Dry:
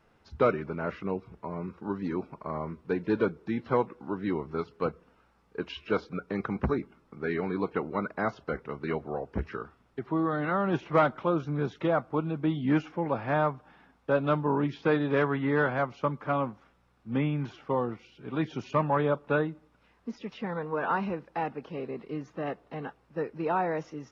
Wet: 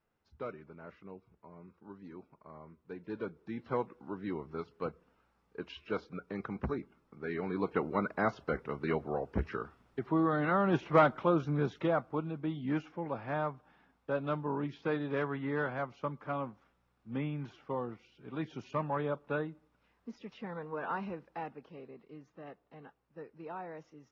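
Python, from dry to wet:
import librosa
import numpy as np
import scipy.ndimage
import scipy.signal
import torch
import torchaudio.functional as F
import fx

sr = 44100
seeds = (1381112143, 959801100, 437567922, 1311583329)

y = fx.gain(x, sr, db=fx.line((2.77, -17.0), (3.73, -7.5), (7.25, -7.5), (7.8, -1.0), (11.55, -1.0), (12.46, -8.0), (21.3, -8.0), (22.01, -15.0)))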